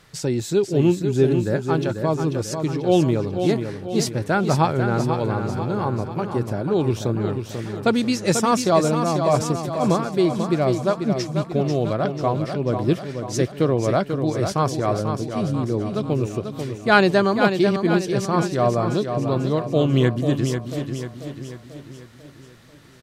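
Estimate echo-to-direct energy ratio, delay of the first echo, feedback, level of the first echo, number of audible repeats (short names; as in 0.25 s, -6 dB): -5.5 dB, 0.491 s, 51%, -7.0 dB, 5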